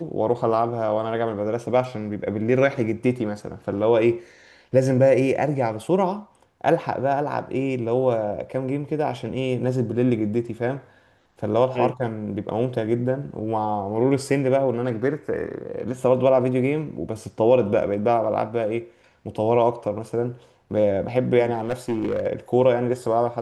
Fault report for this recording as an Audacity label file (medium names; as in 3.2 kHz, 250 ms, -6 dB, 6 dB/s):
21.530000	22.270000	clipped -19.5 dBFS